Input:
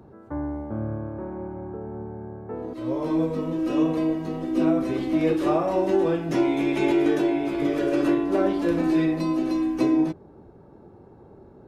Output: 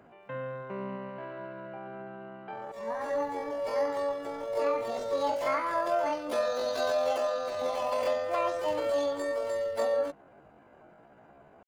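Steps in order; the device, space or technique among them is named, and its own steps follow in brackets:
low-shelf EQ 270 Hz −3 dB
chipmunk voice (pitch shifter +10 semitones)
level −6 dB

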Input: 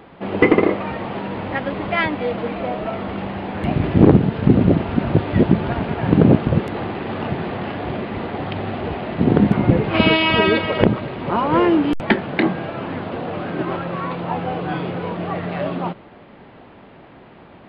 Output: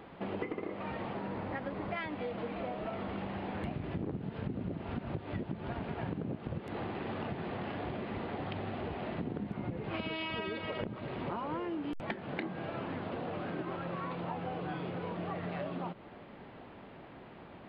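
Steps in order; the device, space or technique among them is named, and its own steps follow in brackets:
0:01.13–0:01.96: parametric band 3,100 Hz −5.5 dB 0.92 octaves
serial compression, leveller first (downward compressor 2.5 to 1, threshold −16 dBFS, peak gain reduction 7.5 dB; downward compressor 6 to 1, threshold −28 dBFS, peak gain reduction 14.5 dB)
level −7 dB

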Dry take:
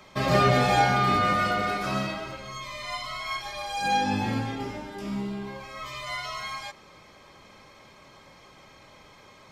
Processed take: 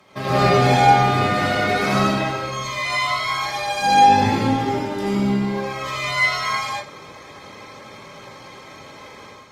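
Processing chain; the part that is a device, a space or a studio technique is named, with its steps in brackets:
far-field microphone of a smart speaker (convolution reverb RT60 0.35 s, pre-delay 79 ms, DRR −3.5 dB; high-pass filter 92 Hz 12 dB per octave; automatic gain control gain up to 8 dB; level −1 dB; Opus 32 kbit/s 48,000 Hz)

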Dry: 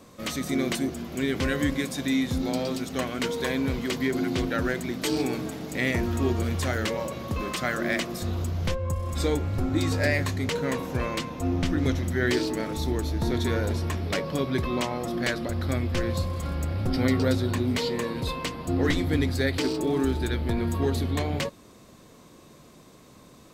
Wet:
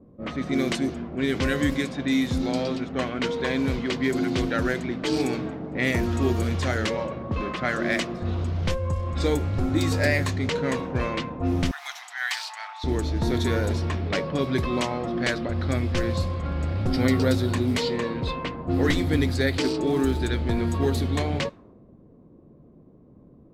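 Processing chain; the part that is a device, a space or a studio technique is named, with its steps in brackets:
cassette deck with a dynamic noise filter (white noise bed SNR 34 dB; low-pass that shuts in the quiet parts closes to 350 Hz, open at −21 dBFS)
0:11.71–0:12.84: Chebyshev high-pass filter 730 Hz, order 6
level +2 dB

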